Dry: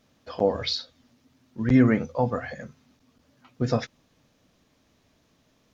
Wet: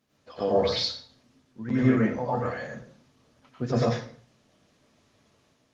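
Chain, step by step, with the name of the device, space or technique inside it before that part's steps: 1.67–2.58 s: peaking EQ 85 Hz -2.5 dB 2.1 oct; de-hum 178.2 Hz, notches 12; far-field microphone of a smart speaker (reverberation RT60 0.50 s, pre-delay 87 ms, DRR -6.5 dB; high-pass 110 Hz 12 dB/octave; level rider gain up to 4 dB; trim -7.5 dB; Opus 20 kbps 48 kHz)

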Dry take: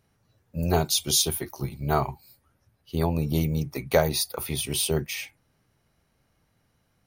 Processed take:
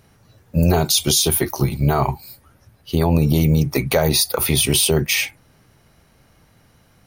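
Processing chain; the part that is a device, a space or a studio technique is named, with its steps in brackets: loud club master (compression 1.5:1, threshold -27 dBFS, peak gain reduction 4.5 dB; hard clipper -10.5 dBFS, distortion -47 dB; loudness maximiser +19.5 dB); trim -5 dB

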